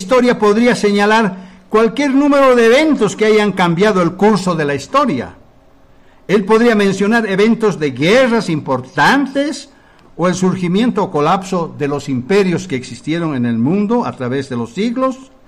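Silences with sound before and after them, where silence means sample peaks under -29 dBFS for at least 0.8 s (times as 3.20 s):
5.31–6.29 s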